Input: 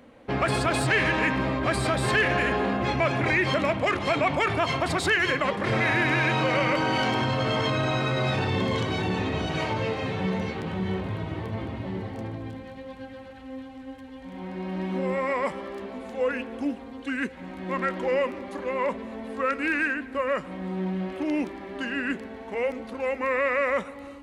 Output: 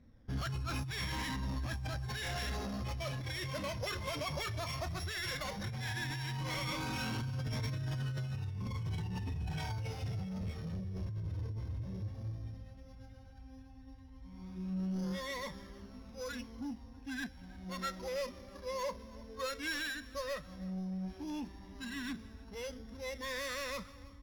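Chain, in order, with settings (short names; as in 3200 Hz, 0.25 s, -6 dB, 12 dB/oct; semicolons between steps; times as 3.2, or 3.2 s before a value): sample sorter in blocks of 8 samples; RIAA curve playback; spectral noise reduction 8 dB; passive tone stack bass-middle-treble 5-5-5; negative-ratio compressor -39 dBFS, ratio -1; soft clip -37.5 dBFS, distortion -13 dB; flange 0.13 Hz, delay 0.5 ms, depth 1.5 ms, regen +43%; on a send: feedback echo 0.322 s, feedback 37%, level -21 dB; on the sum: mismatched tape noise reduction decoder only; gain +8 dB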